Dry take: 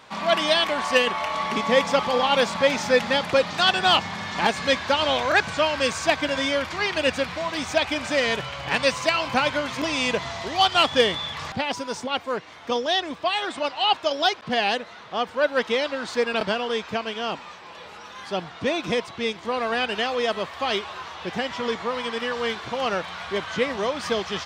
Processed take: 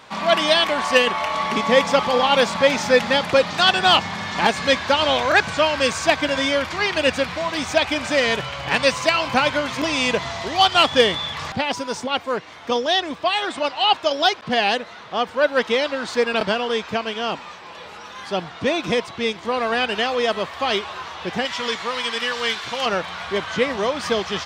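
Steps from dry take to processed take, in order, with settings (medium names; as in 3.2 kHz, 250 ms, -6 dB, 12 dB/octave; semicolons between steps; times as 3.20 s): 21.45–22.86 s: tilt shelf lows -6.5 dB, about 1.3 kHz; trim +3.5 dB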